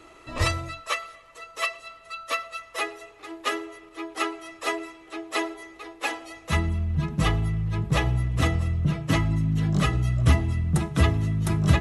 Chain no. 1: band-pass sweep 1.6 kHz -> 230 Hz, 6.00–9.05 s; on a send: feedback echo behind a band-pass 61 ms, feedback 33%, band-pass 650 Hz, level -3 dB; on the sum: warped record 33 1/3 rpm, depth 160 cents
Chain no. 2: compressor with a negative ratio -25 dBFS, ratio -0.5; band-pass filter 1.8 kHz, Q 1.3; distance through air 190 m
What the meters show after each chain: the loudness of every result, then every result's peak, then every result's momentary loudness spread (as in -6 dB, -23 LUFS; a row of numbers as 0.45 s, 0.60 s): -35.0 LUFS, -38.5 LUFS; -16.5 dBFS, -17.5 dBFS; 14 LU, 12 LU